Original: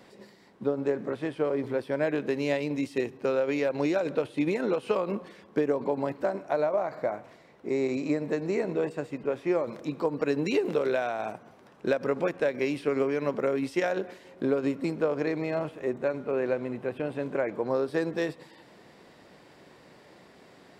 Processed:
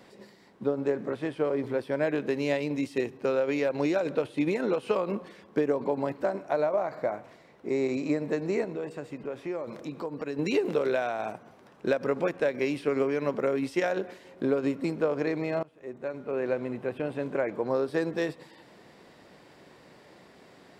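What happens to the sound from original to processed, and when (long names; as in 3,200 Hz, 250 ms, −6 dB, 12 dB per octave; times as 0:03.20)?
0:08.64–0:10.39: downward compressor 2 to 1, threshold −35 dBFS
0:15.63–0:16.59: fade in, from −23.5 dB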